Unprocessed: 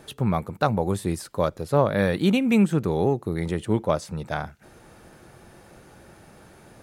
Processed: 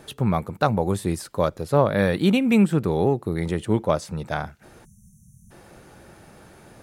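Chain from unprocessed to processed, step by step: 1.76–3.43 notch 6400 Hz, Q 8.3; 4.85–5.51 spectral delete 220–5500 Hz; gain +1.5 dB

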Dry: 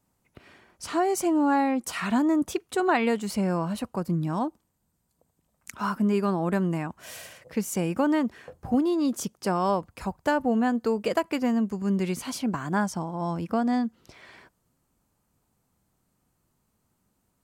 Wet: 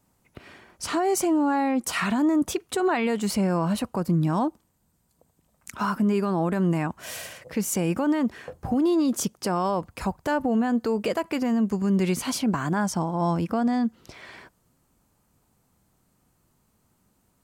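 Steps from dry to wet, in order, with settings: limiter -21.5 dBFS, peak gain reduction 9.5 dB; gain +5.5 dB

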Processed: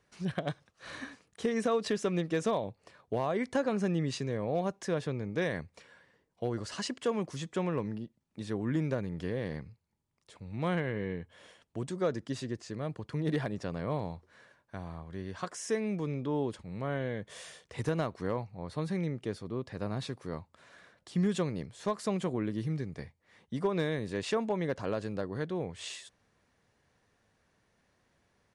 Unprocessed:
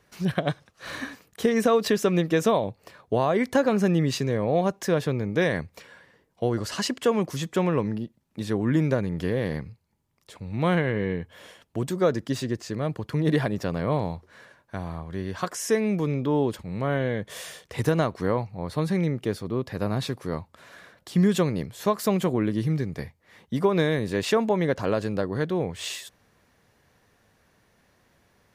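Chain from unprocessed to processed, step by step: downsampling 22050 Hz; hard clip -13 dBFS, distortion -32 dB; gain -8.5 dB

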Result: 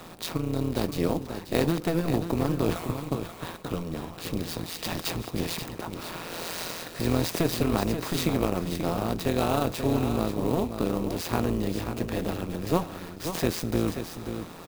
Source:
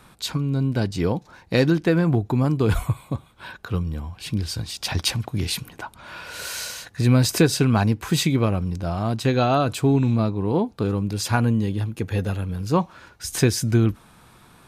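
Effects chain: per-bin compression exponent 0.6; HPF 190 Hz 12 dB/oct; low shelf 260 Hz +6 dB; notch 1500 Hz, Q 9.7; AM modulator 170 Hz, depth 75%; echo 0.533 s -8.5 dB; clock jitter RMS 0.027 ms; gain -6 dB

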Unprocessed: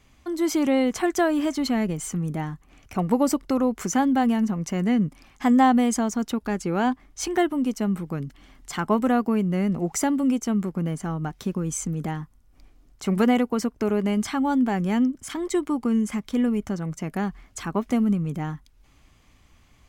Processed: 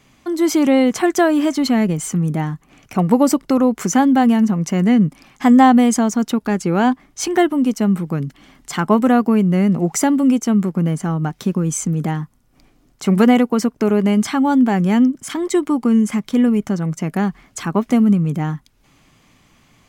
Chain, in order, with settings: resonant low shelf 100 Hz -10 dB, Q 1.5; gain +6.5 dB

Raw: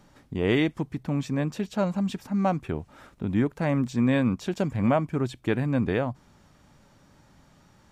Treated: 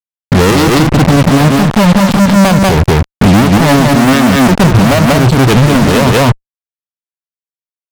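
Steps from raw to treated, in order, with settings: Wiener smoothing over 25 samples; fuzz box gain 49 dB, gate -44 dBFS; bell 370 Hz -3.5 dB 1.5 oct; echo 0.191 s -3.5 dB; maximiser +15 dB; gain -1 dB

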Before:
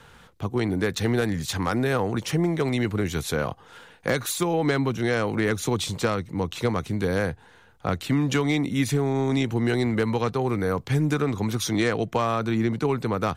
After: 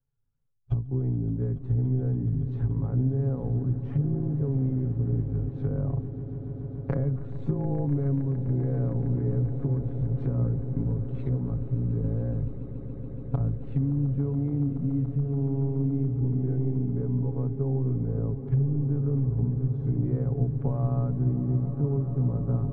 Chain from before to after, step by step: recorder AGC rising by 16 dB/s; gate -34 dBFS, range -42 dB; treble ducked by the level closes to 880 Hz, closed at -23 dBFS; low shelf 200 Hz +10 dB; harmonic-percussive split percussive -4 dB; tilt -4 dB/oct; compressor 6:1, threshold -20 dBFS, peak gain reduction 16.5 dB; granular stretch 1.7×, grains 35 ms; on a send: swelling echo 0.142 s, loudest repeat 8, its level -17 dB; on the sum: gain -4.5 dB

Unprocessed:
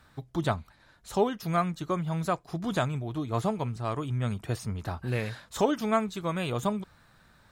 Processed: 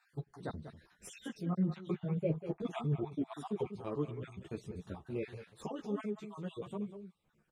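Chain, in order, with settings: random spectral dropouts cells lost 48%; Doppler pass-by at 1.99, 10 m/s, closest 2.6 m; reverse; compressor 6:1, threshold -48 dBFS, peak gain reduction 18 dB; reverse; fifteen-band EQ 160 Hz +11 dB, 400 Hz +4 dB, 2500 Hz +6 dB, 10000 Hz +9 dB; echo 0.193 s -11.5 dB; treble ducked by the level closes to 2300 Hz, closed at -40 dBFS; bell 390 Hz +11 dB 1.4 oct; ensemble effect; gain +8.5 dB

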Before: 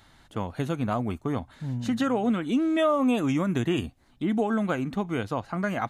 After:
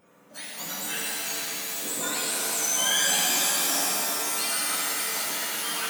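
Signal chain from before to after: spectrum mirrored in octaves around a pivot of 1400 Hz; shimmer reverb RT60 3.7 s, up +7 st, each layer -2 dB, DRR -6 dB; gain -3.5 dB

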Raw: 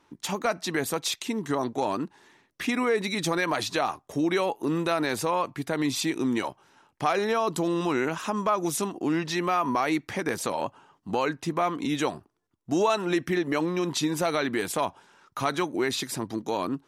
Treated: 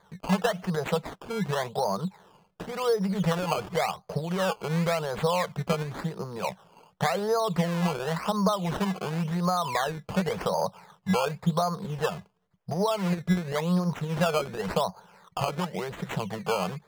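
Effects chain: compressor, threshold -28 dBFS, peak gain reduction 9 dB; EQ curve 120 Hz 0 dB, 190 Hz +11 dB, 270 Hz -30 dB, 460 Hz +5 dB, 1400 Hz 0 dB, 2800 Hz -27 dB, 14000 Hz +6 dB; decimation with a swept rate 16×, swing 100% 0.92 Hz; high shelf 6600 Hz -9 dB; gain +4 dB

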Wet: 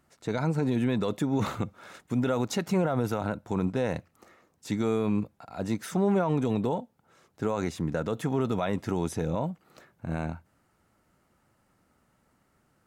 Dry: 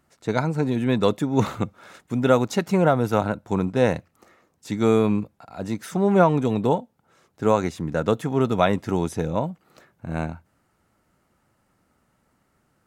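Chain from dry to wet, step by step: limiter -16 dBFS, peak gain reduction 11 dB; gain -1.5 dB

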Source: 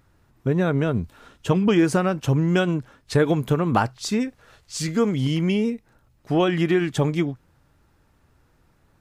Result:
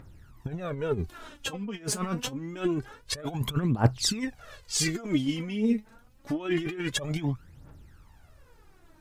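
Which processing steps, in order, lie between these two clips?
negative-ratio compressor -25 dBFS, ratio -0.5; phaser 0.26 Hz, delay 4.8 ms, feedback 72%; gain -4.5 dB

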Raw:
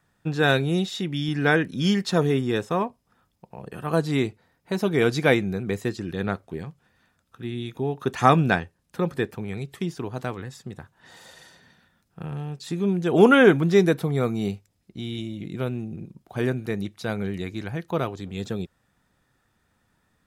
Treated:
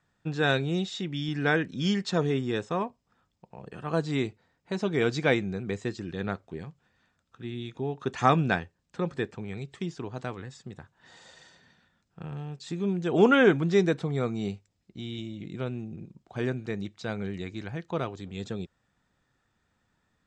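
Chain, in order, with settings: elliptic low-pass 7800 Hz, stop band 60 dB; gain -4 dB

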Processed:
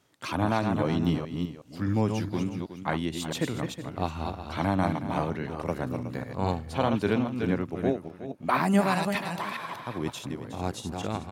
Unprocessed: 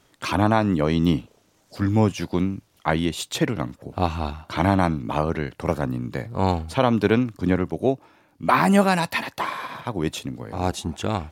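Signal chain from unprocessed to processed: reverse delay 0.208 s, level -5.5 dB; HPF 89 Hz; low shelf 130 Hz +3 dB; echo 0.367 s -12.5 dB; gain -7.5 dB

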